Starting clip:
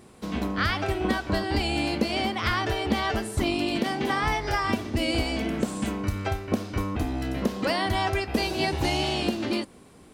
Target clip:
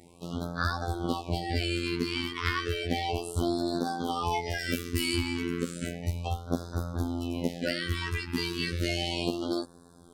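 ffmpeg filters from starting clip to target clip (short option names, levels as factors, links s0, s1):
-filter_complex "[0:a]asettb=1/sr,asplit=3[s0][s1][s2];[s0]atrim=end=4.594[s3];[s1]atrim=start=4.59:end=5.16,asetpts=PTS-STARTPTS,afade=t=in:d=0.004:c=qsin,afade=t=out:st=0.566:d=0.004:c=qsin,aemphasis=mode=production:type=50fm[s4];[s2]atrim=start=5.156[s5];[s3][s4]acrossfade=d=0.004:c1=hsin:c2=qsin[s6];[s6][s5]acrossfade=d=0.004:c1=qsin:c2=hsin,afftfilt=real='hypot(re,im)*cos(PI*b)':imag='0':win_size=2048:overlap=0.75,afftfilt=real='re*(1-between(b*sr/1024,600*pow(2500/600,0.5+0.5*sin(2*PI*0.33*pts/sr))/1.41,600*pow(2500/600,0.5+0.5*sin(2*PI*0.33*pts/sr))*1.41))':imag='im*(1-between(b*sr/1024,600*pow(2500/600,0.5+0.5*sin(2*PI*0.33*pts/sr))/1.41,600*pow(2500/600,0.5+0.5*sin(2*PI*0.33*pts/sr))*1.41))':win_size=1024:overlap=0.75"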